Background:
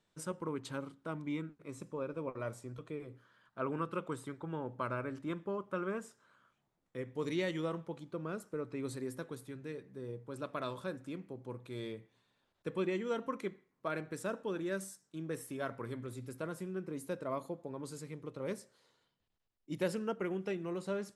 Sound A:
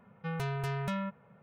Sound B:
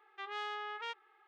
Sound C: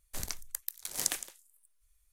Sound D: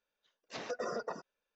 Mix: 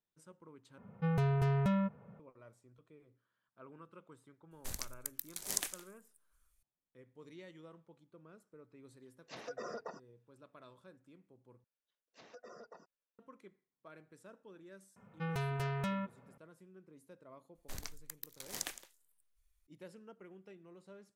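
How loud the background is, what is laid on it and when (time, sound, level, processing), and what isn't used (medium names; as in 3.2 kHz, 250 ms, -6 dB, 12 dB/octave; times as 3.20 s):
background -18 dB
0.78 s: replace with A -1 dB + tilt shelf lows +5.5 dB
4.51 s: add C -4.5 dB
8.78 s: add D -6 dB
11.64 s: replace with D -16 dB
14.96 s: add A -2.5 dB
17.55 s: add C -5 dB + peaking EQ 10 kHz -7.5 dB 1.3 oct
not used: B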